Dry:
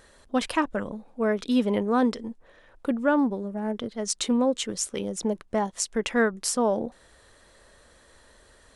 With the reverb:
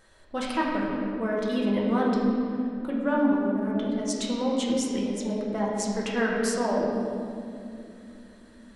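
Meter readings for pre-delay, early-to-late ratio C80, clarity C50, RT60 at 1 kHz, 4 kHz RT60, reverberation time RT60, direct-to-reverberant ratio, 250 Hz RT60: 5 ms, 1.0 dB, 0.0 dB, 2.2 s, 1.6 s, 2.8 s, -4.5 dB, 4.9 s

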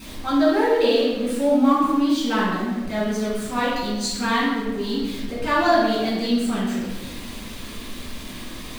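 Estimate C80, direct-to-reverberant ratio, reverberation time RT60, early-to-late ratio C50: 2.0 dB, -7.5 dB, 1.2 s, -1.0 dB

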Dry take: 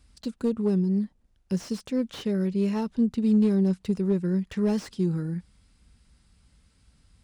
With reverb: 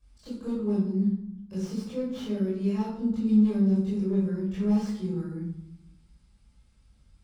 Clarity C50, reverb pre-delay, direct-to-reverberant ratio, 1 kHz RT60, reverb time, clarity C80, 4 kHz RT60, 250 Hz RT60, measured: 1.0 dB, 19 ms, -10.5 dB, 0.80 s, 0.75 s, 4.5 dB, 0.50 s, 1.2 s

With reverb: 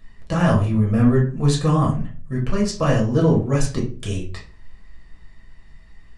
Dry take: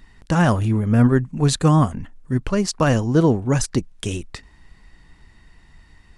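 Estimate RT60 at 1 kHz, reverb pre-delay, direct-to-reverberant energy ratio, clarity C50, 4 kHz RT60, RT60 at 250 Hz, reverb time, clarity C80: 0.35 s, 6 ms, -3.0 dB, 8.0 dB, 0.30 s, 0.50 s, 0.40 s, 13.5 dB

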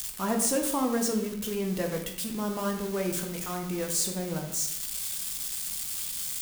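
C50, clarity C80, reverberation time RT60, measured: 7.0 dB, 10.0 dB, 0.80 s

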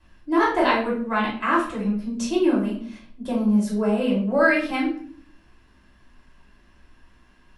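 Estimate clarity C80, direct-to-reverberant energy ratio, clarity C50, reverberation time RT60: 10.0 dB, -6.0 dB, 5.0 dB, 0.50 s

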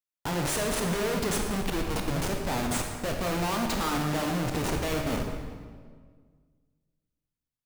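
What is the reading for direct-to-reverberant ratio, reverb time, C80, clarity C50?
2.0 dB, 1.7 s, 5.0 dB, 3.5 dB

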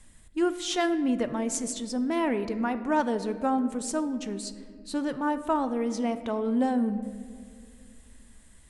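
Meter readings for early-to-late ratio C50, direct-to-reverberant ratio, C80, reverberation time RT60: 12.0 dB, 10.5 dB, 13.0 dB, 2.1 s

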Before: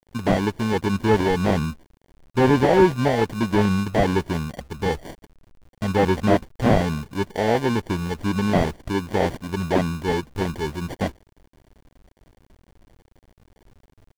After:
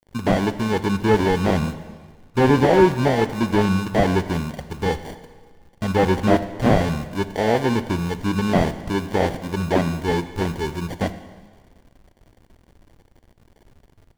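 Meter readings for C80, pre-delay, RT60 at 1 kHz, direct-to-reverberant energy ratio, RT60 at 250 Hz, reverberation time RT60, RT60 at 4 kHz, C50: 14.0 dB, 6 ms, 1.5 s, 11.5 dB, 1.5 s, 1.5 s, 1.5 s, 13.0 dB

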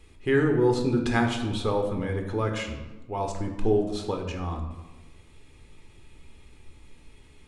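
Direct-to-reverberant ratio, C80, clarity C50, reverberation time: 2.5 dB, 9.0 dB, 7.0 dB, 1.2 s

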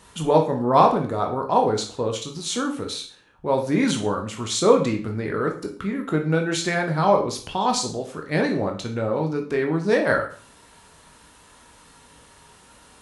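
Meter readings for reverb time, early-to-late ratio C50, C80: 0.40 s, 9.5 dB, 14.0 dB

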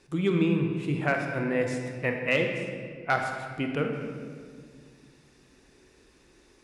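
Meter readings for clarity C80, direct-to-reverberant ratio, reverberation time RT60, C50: 5.5 dB, 3.0 dB, 1.9 s, 4.0 dB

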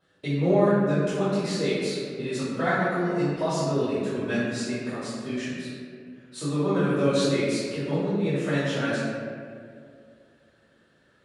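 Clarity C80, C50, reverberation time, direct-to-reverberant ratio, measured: -0.5 dB, -3.0 dB, 2.2 s, -17.5 dB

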